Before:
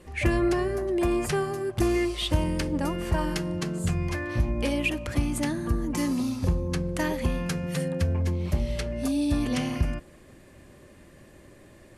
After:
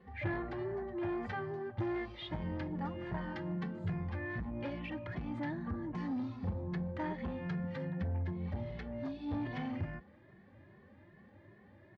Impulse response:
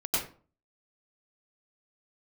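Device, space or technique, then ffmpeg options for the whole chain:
barber-pole flanger into a guitar amplifier: -filter_complex "[0:a]asplit=2[a][b];[b]adelay=2.3,afreqshift=2.5[c];[a][c]amix=inputs=2:normalize=1,asoftclip=type=tanh:threshold=-25.5dB,highpass=77,equalizer=f=100:t=q:w=4:g=9,equalizer=f=200:t=q:w=4:g=8,equalizer=f=850:t=q:w=4:g=7,equalizer=f=1.8k:t=q:w=4:g=6,equalizer=f=2.7k:t=q:w=4:g=-7,lowpass=f=3.4k:w=0.5412,lowpass=f=3.4k:w=1.3066,volume=-7.5dB"

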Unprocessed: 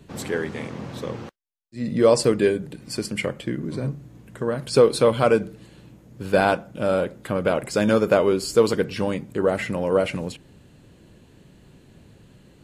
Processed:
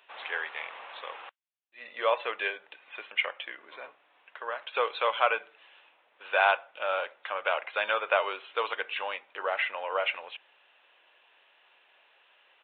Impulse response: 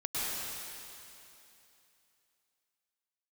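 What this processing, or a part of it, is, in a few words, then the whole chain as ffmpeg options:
musical greeting card: -af "aresample=8000,aresample=44100,highpass=f=760:w=0.5412,highpass=f=760:w=1.3066,equalizer=f=2.6k:t=o:w=0.34:g=4.5"

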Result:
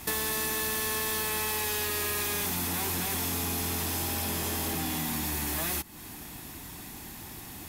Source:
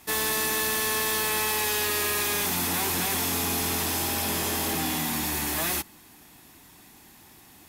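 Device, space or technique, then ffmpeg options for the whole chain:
ASMR close-microphone chain: -af "lowshelf=f=160:g=8,acompressor=threshold=-38dB:ratio=6,highshelf=f=11k:g=3.5,volume=7dB"

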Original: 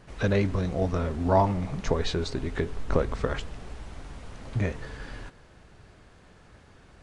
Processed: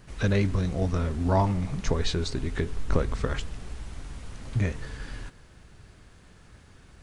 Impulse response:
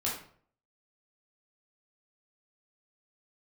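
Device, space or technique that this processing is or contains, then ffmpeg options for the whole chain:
smiley-face EQ: -af "lowshelf=f=140:g=3.5,equalizer=f=640:t=o:w=1.5:g=-4.5,highshelf=f=7.1k:g=8.5"

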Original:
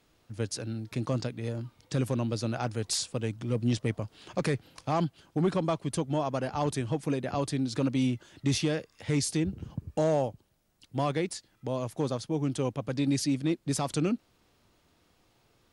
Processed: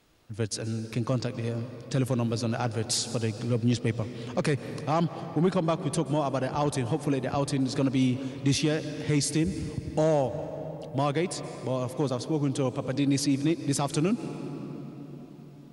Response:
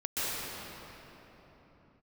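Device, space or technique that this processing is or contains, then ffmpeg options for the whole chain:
ducked reverb: -filter_complex "[0:a]asplit=3[a][b][c];[1:a]atrim=start_sample=2205[d];[b][d]afir=irnorm=-1:irlink=0[e];[c]apad=whole_len=693341[f];[e][f]sidechaincompress=threshold=-30dB:ratio=8:attack=7.2:release=152,volume=-18dB[g];[a][g]amix=inputs=2:normalize=0,volume=2dB"

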